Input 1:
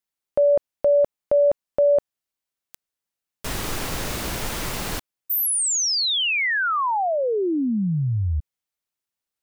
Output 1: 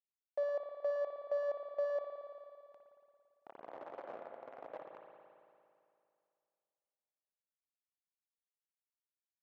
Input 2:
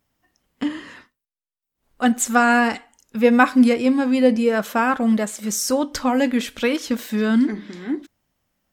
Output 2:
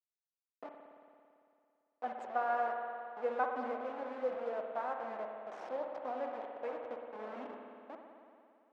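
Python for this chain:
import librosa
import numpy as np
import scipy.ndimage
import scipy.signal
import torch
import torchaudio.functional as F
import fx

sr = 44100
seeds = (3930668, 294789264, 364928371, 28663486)

y = fx.delta_hold(x, sr, step_db=-17.5)
y = fx.ladder_bandpass(y, sr, hz=750.0, resonance_pct=45)
y = fx.rev_spring(y, sr, rt60_s=2.5, pass_ms=(56,), chirp_ms=40, drr_db=2.5)
y = y * 10.0 ** (-7.0 / 20.0)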